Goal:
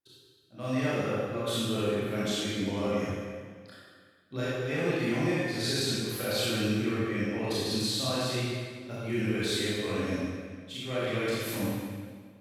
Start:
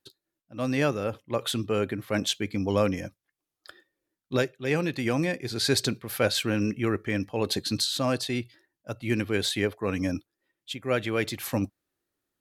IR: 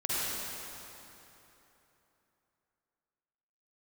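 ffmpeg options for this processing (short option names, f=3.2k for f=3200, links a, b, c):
-filter_complex "[0:a]alimiter=limit=-17.5dB:level=0:latency=1[a];[1:a]atrim=start_sample=2205,asetrate=83790,aresample=44100[b];[a][b]afir=irnorm=-1:irlink=0,volume=-4dB"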